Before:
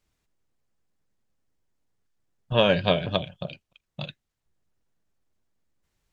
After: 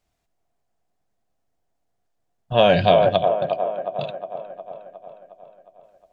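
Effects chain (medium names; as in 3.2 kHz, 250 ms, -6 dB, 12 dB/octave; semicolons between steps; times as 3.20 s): peaking EQ 700 Hz +14 dB 0.32 oct; feedback echo behind a band-pass 360 ms, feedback 59%, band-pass 630 Hz, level -3.5 dB; 2.59–3.09 s: level flattener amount 50%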